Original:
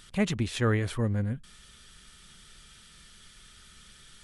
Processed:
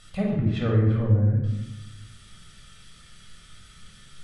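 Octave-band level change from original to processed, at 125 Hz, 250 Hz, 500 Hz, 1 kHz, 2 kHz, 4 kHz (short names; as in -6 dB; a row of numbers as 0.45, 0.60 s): +8.5, +4.0, +2.5, -1.0, -5.5, -4.0 dB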